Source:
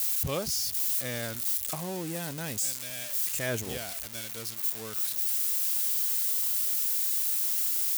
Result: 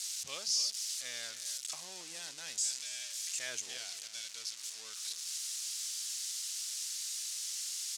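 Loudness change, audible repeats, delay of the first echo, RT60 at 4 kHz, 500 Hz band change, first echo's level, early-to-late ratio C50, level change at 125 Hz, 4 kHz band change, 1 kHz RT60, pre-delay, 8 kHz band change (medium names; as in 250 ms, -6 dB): -9.5 dB, 1, 274 ms, no reverb, -18.5 dB, -13.5 dB, no reverb, under -25 dB, +0.5 dB, no reverb, no reverb, -3.0 dB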